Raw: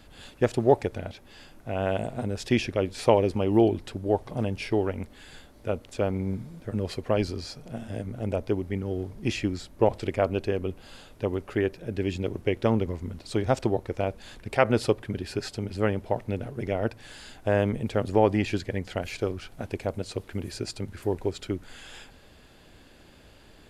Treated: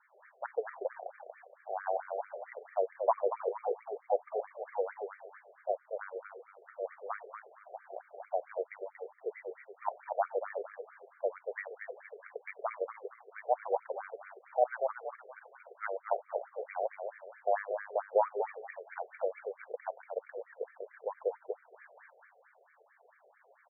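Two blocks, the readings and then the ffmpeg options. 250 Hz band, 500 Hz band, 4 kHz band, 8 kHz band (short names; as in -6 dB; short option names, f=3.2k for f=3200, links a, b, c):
under -30 dB, -8.0 dB, under -40 dB, under -35 dB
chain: -filter_complex "[0:a]asplit=6[a][b][c][d][e][f];[b]adelay=234,afreqshift=-80,volume=-5.5dB[g];[c]adelay=468,afreqshift=-160,volume=-13.5dB[h];[d]adelay=702,afreqshift=-240,volume=-21.4dB[i];[e]adelay=936,afreqshift=-320,volume=-29.4dB[j];[f]adelay=1170,afreqshift=-400,volume=-37.3dB[k];[a][g][h][i][j][k]amix=inputs=6:normalize=0,highpass=f=290:t=q:w=0.5412,highpass=f=290:t=q:w=1.307,lowpass=f=3.3k:t=q:w=0.5176,lowpass=f=3.3k:t=q:w=0.7071,lowpass=f=3.3k:t=q:w=1.932,afreqshift=90,afftfilt=real='re*between(b*sr/1024,530*pow(1700/530,0.5+0.5*sin(2*PI*4.5*pts/sr))/1.41,530*pow(1700/530,0.5+0.5*sin(2*PI*4.5*pts/sr))*1.41)':imag='im*between(b*sr/1024,530*pow(1700/530,0.5+0.5*sin(2*PI*4.5*pts/sr))/1.41,530*pow(1700/530,0.5+0.5*sin(2*PI*4.5*pts/sr))*1.41)':win_size=1024:overlap=0.75,volume=-3dB"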